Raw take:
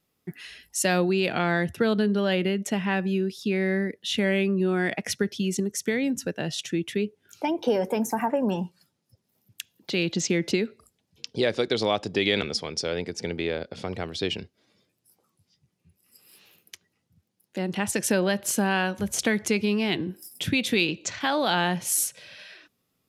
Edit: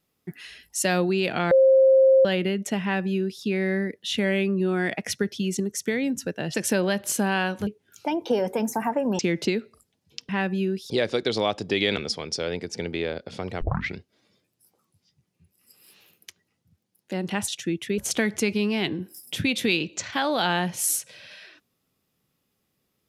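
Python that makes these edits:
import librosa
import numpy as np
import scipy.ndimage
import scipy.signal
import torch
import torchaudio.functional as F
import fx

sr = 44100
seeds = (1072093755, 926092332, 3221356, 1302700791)

y = fx.edit(x, sr, fx.bleep(start_s=1.51, length_s=0.74, hz=531.0, db=-12.5),
    fx.duplicate(start_s=2.82, length_s=0.61, to_s=11.35),
    fx.swap(start_s=6.54, length_s=0.5, other_s=17.93, other_length_s=1.13),
    fx.cut(start_s=8.56, length_s=1.69),
    fx.tape_start(start_s=14.06, length_s=0.35), tone=tone)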